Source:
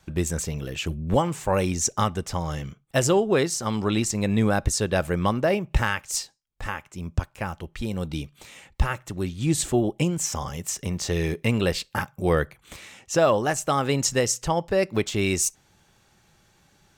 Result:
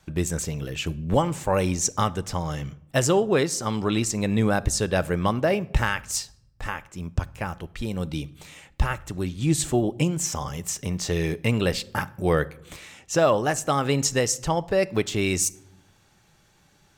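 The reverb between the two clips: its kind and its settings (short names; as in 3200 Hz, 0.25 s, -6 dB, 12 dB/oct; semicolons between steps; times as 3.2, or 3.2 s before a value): shoebox room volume 2500 m³, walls furnished, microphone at 0.41 m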